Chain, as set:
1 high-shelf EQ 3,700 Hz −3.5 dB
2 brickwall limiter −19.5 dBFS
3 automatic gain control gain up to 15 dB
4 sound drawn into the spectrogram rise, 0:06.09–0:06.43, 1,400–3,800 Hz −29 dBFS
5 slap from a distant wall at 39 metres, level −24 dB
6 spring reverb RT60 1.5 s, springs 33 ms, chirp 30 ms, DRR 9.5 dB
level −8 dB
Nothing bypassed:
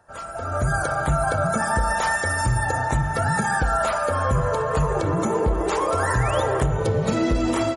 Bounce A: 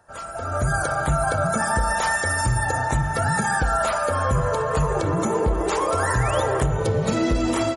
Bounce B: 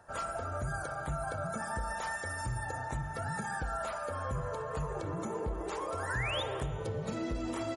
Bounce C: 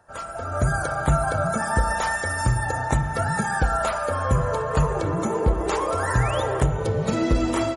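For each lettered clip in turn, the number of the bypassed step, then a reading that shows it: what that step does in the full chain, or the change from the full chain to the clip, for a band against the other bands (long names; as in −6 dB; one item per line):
1, 8 kHz band +2.5 dB
3, change in crest factor +2.0 dB
2, change in crest factor +2.5 dB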